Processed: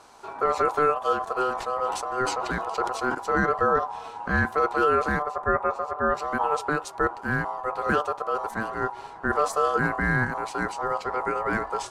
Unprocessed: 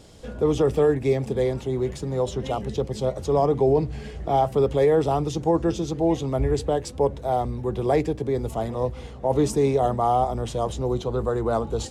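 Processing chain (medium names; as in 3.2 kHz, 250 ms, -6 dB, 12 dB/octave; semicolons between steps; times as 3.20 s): 5.22–6.17 s: FFT filter 950 Hz 0 dB, 5.3 kHz -18 dB, 8.5 kHz -12 dB; ring modulator 890 Hz; 1.50–3.15 s: decay stretcher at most 52 dB/s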